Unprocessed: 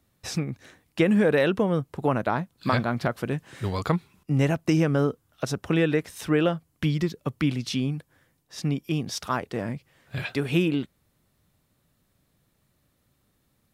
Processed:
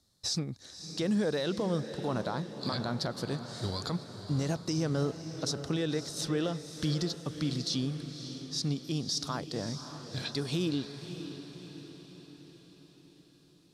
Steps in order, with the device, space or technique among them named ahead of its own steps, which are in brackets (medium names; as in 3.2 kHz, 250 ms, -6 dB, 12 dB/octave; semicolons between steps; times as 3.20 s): low-pass 8.5 kHz 12 dB/octave; over-bright horn tweeter (resonant high shelf 3.3 kHz +9 dB, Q 3; peak limiter -16.5 dBFS, peak gain reduction 9.5 dB); echo that smears into a reverb 577 ms, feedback 55%, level -10 dB; trim -6 dB